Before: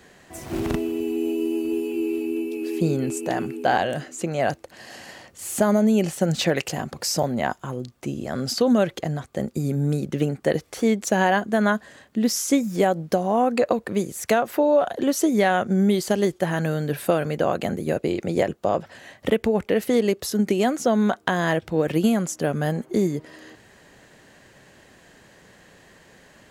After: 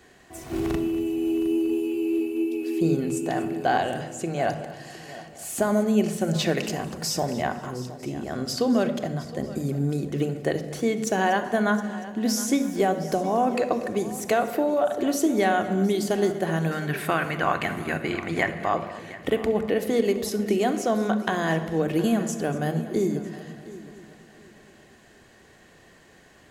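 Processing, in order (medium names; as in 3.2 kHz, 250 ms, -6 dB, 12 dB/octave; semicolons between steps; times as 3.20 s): 16.71–18.74 s: graphic EQ 500/1000/2000 Hz -9/+8/+11 dB; multi-head delay 238 ms, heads first and third, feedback 44%, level -17.5 dB; on a send at -7 dB: reverberation RT60 0.95 s, pre-delay 3 ms; on the sum: trim -3.5 dB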